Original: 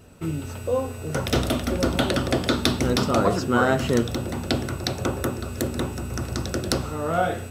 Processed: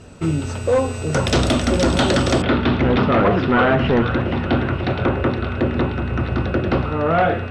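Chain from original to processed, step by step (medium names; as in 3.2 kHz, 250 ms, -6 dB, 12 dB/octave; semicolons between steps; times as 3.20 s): feedback echo behind a high-pass 469 ms, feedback 66%, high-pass 1.4 kHz, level -9.5 dB; hard clipper -19.5 dBFS, distortion -10 dB; low-pass 8.3 kHz 24 dB/octave, from 2.42 s 2.9 kHz; trim +8 dB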